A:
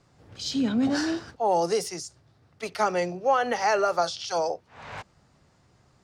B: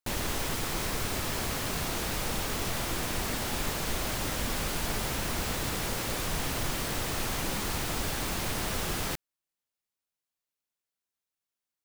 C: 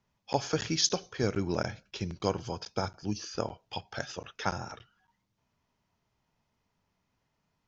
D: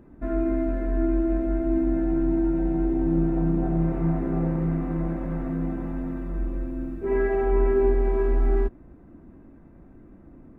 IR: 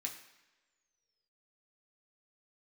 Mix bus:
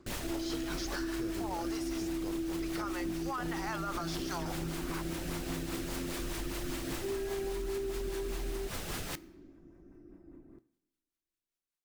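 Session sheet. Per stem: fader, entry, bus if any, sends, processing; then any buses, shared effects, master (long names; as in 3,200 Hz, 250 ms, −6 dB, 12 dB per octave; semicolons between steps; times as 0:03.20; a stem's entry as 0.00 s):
−0.5 dB, 0.00 s, bus A, no send, high-pass with resonance 1,100 Hz, resonance Q 2.5
−3.0 dB, 0.00 s, bus A, send −13.5 dB, no processing
−6.0 dB, 0.00 s, no bus, no send, brickwall limiter −19 dBFS, peak gain reduction 8 dB
−7.5 dB, 0.00 s, bus A, send −7.5 dB, parametric band 350 Hz +9.5 dB 0.38 octaves
bus A: 0.0 dB, rotating-speaker cabinet horn 5 Hz; brickwall limiter −19.5 dBFS, peak gain reduction 10 dB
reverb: on, pre-delay 3 ms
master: downward compressor, threshold −33 dBFS, peak gain reduction 9.5 dB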